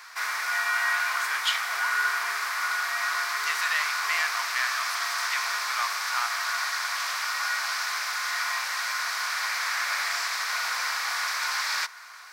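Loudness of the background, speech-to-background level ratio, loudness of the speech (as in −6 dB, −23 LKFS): −27.0 LKFS, −4.5 dB, −31.5 LKFS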